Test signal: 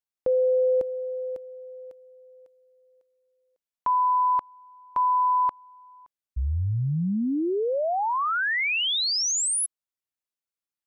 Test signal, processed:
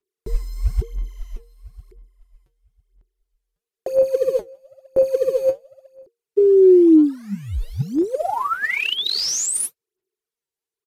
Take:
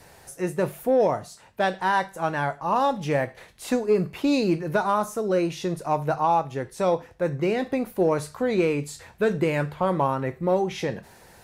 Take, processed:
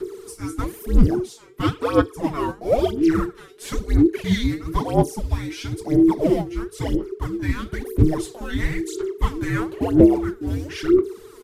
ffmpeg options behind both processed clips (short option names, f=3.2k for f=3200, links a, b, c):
-filter_complex "[0:a]asplit=2[a][b];[b]acrusher=bits=4:mode=log:mix=0:aa=0.000001,volume=-9dB[c];[a][c]amix=inputs=2:normalize=0,lowshelf=f=150:t=q:w=3:g=13.5,aphaser=in_gain=1:out_gain=1:delay=5:decay=0.77:speed=1:type=sinusoidal,afreqshift=-470,aresample=32000,aresample=44100,volume=-4dB"